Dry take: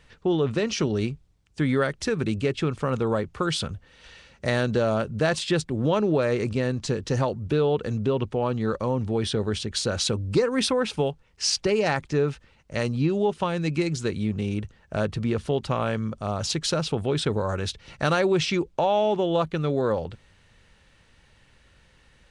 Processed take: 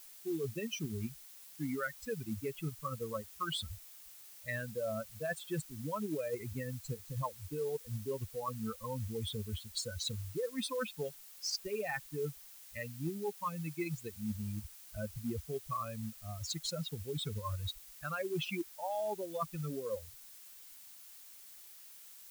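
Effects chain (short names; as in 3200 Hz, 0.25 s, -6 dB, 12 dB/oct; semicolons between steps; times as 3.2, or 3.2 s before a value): per-bin expansion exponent 3; dynamic EQ 1100 Hz, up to +7 dB, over -53 dBFS, Q 4.2; reverse; compressor 8:1, threshold -36 dBFS, peak gain reduction 16 dB; reverse; added noise blue -56 dBFS; companded quantiser 6-bit; gain +1.5 dB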